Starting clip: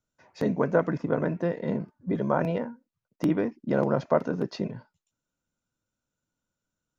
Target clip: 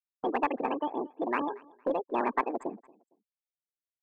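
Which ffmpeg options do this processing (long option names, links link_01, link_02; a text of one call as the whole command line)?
ffmpeg -i in.wav -filter_complex "[0:a]afftfilt=real='re*gte(hypot(re,im),0.0398)':imag='im*gte(hypot(re,im),0.0398)':win_size=1024:overlap=0.75,highshelf=frequency=3500:gain=-11.5,asplit=2[link_01][link_02];[link_02]aeval=exprs='clip(val(0),-1,0.075)':channel_layout=same,volume=-5.5dB[link_03];[link_01][link_03]amix=inputs=2:normalize=0,aecho=1:1:398|796:0.0631|0.0183,asetrate=76440,aresample=44100,volume=-7.5dB" out.wav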